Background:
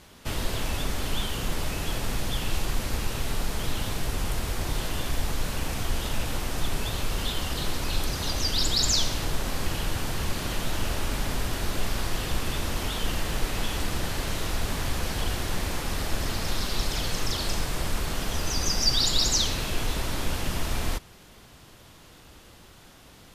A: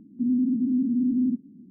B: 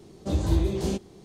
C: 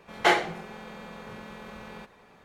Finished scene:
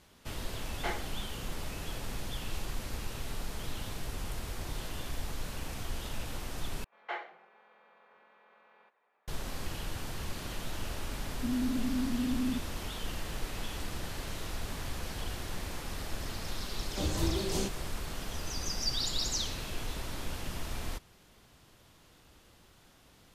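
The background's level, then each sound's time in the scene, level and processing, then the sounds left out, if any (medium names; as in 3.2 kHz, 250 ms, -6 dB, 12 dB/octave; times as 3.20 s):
background -9.5 dB
0.59 s: add C -15.5 dB
6.84 s: replace with C -15.5 dB + band-pass 600–2400 Hz
11.23 s: add A -9 dB
16.71 s: add B -3 dB + tilt EQ +2 dB/octave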